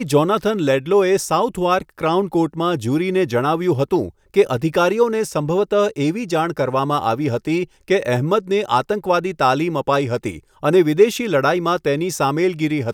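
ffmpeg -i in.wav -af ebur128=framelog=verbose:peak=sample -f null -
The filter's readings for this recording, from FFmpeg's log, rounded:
Integrated loudness:
  I:         -18.6 LUFS
  Threshold: -28.6 LUFS
Loudness range:
  LRA:         1.6 LU
  Threshold: -38.8 LUFS
  LRA low:   -19.6 LUFS
  LRA high:  -18.0 LUFS
Sample peak:
  Peak:       -1.5 dBFS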